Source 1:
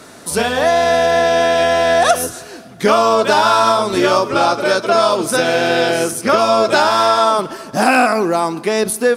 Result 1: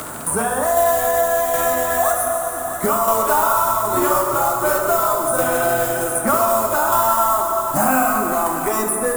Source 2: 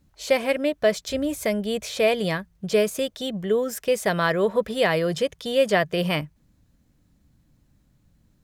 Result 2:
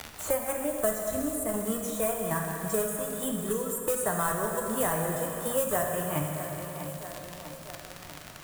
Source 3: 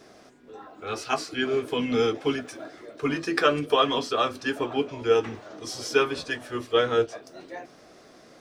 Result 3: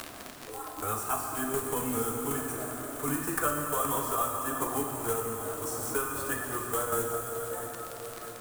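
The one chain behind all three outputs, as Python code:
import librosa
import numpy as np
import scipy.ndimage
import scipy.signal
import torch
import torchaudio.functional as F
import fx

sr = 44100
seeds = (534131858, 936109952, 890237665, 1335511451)

p1 = fx.block_float(x, sr, bits=3)
p2 = fx.noise_reduce_blind(p1, sr, reduce_db=8)
p3 = fx.curve_eq(p2, sr, hz=(100.0, 180.0, 270.0, 440.0, 680.0, 1200.0, 2300.0, 5000.0, 8100.0), db=(0, -10, -9, -12, -7, -3, -18, -21, 2))
p4 = fx.dmg_crackle(p3, sr, seeds[0], per_s=57.0, level_db=-39.0)
p5 = fx.tremolo_shape(p4, sr, shape='saw_down', hz=1.3, depth_pct=60)
p6 = np.clip(p5, -10.0 ** (-17.5 / 20.0), 10.0 ** (-17.5 / 20.0))
p7 = p5 + (p6 * librosa.db_to_amplitude(-7.0))
p8 = fx.echo_feedback(p7, sr, ms=647, feedback_pct=34, wet_db=-19.5)
p9 = fx.rev_plate(p8, sr, seeds[1], rt60_s=2.1, hf_ratio=0.85, predelay_ms=0, drr_db=1.5)
y = fx.band_squash(p9, sr, depth_pct=70)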